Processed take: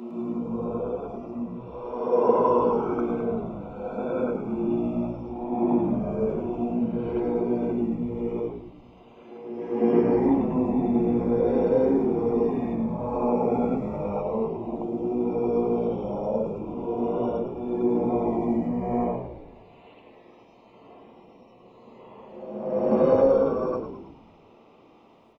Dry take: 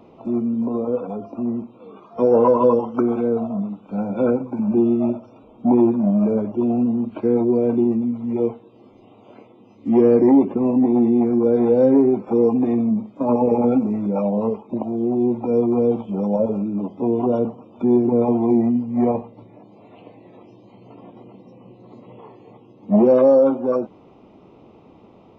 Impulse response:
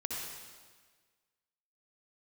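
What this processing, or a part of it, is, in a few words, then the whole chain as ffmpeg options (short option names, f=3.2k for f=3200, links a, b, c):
ghost voice: -filter_complex "[0:a]areverse[a];[1:a]atrim=start_sample=2205[b];[a][b]afir=irnorm=-1:irlink=0,areverse,highpass=f=710:p=1,asplit=8[c][d][e][f][g][h][i][j];[d]adelay=107,afreqshift=-57,volume=-9dB[k];[e]adelay=214,afreqshift=-114,volume=-14dB[l];[f]adelay=321,afreqshift=-171,volume=-19.1dB[m];[g]adelay=428,afreqshift=-228,volume=-24.1dB[n];[h]adelay=535,afreqshift=-285,volume=-29.1dB[o];[i]adelay=642,afreqshift=-342,volume=-34.2dB[p];[j]adelay=749,afreqshift=-399,volume=-39.2dB[q];[c][k][l][m][n][o][p][q]amix=inputs=8:normalize=0,volume=-3dB"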